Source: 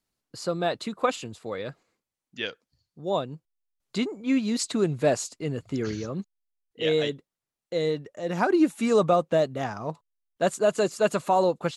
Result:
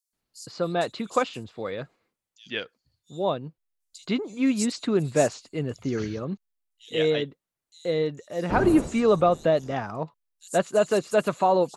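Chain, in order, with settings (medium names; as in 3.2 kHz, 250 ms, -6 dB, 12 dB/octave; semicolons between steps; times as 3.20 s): 8.36–9.59 s: wind noise 390 Hz -33 dBFS; bands offset in time highs, lows 130 ms, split 5.1 kHz; trim +1 dB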